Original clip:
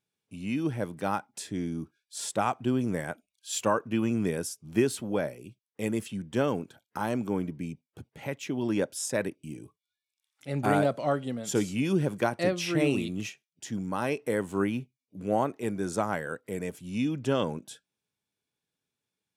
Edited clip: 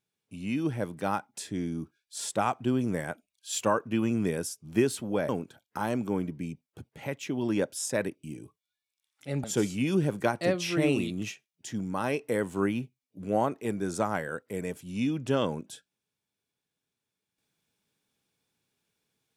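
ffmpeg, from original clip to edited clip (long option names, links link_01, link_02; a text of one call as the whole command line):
ffmpeg -i in.wav -filter_complex "[0:a]asplit=3[link_01][link_02][link_03];[link_01]atrim=end=5.292[link_04];[link_02]atrim=start=6.488:end=10.642[link_05];[link_03]atrim=start=11.418[link_06];[link_04][link_05]acrossfade=duration=0.004:curve1=hsin:curve2=hsin[link_07];[link_07][link_06]acrossfade=duration=0.004:curve1=hsin:curve2=hsin" out.wav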